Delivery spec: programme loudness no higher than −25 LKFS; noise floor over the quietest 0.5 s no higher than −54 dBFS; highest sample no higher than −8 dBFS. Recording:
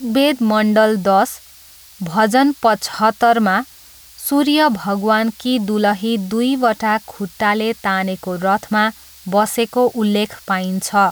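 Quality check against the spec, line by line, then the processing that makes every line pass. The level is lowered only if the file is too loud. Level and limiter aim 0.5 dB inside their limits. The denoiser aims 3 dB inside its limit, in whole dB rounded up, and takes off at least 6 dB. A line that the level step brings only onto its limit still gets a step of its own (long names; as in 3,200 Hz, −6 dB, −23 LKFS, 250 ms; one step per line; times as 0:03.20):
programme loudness −16.5 LKFS: out of spec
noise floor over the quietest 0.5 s −43 dBFS: out of spec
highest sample −3.5 dBFS: out of spec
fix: broadband denoise 6 dB, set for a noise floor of −43 dBFS
level −9 dB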